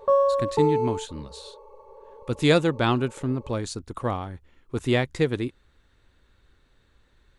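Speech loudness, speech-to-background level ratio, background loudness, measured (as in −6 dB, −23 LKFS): −26.5 LKFS, −2.5 dB, −24.0 LKFS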